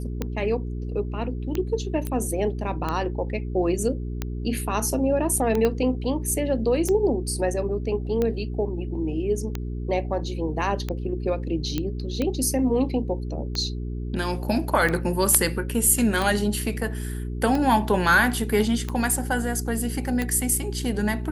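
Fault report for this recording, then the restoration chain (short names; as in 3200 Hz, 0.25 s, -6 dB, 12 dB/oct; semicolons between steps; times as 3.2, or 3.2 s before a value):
hum 60 Hz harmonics 7 -30 dBFS
tick 45 rpm -13 dBFS
2.07 pop -15 dBFS
5.65 pop -11 dBFS
11.78 pop -12 dBFS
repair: de-click; de-hum 60 Hz, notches 7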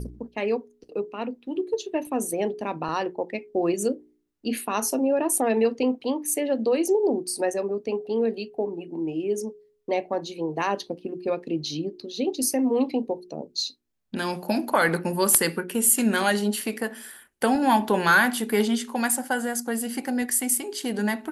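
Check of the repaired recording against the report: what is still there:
5.65 pop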